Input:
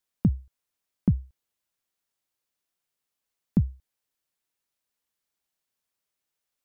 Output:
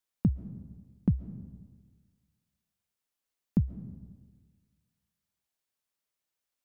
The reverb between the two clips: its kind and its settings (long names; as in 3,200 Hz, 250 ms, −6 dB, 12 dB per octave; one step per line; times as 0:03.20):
comb and all-pass reverb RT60 1.5 s, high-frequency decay 0.45×, pre-delay 95 ms, DRR 13.5 dB
level −3.5 dB